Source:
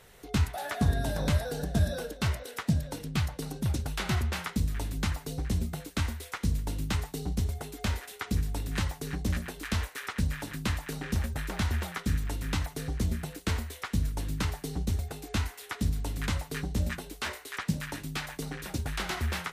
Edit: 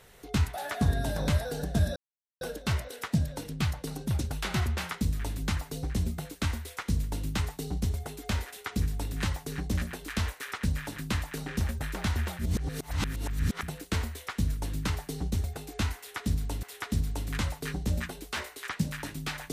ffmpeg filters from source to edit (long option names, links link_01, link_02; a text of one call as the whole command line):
ffmpeg -i in.wav -filter_complex "[0:a]asplit=5[link_01][link_02][link_03][link_04][link_05];[link_01]atrim=end=1.96,asetpts=PTS-STARTPTS,afade=type=out:start_time=1.956:duration=0.004:curve=hsin,apad=pad_dur=0.45[link_06];[link_02]atrim=start=1.96:end=11.942,asetpts=PTS-STARTPTS,afade=type=in:duration=0.004:curve=hsin[link_07];[link_03]atrim=start=11.938:end=13.182,asetpts=PTS-STARTPTS,areverse[link_08];[link_04]atrim=start=13.178:end=16.182[link_09];[link_05]atrim=start=15.518[link_10];[link_06][link_07]concat=n=2:v=0:a=1[link_11];[link_11][link_08]acrossfade=duration=0.004:curve1=hsin:curve2=hsin[link_12];[link_12][link_09]acrossfade=duration=0.004:curve1=hsin:curve2=hsin[link_13];[link_13][link_10]acrossfade=duration=0.004:curve1=hsin:curve2=hsin" out.wav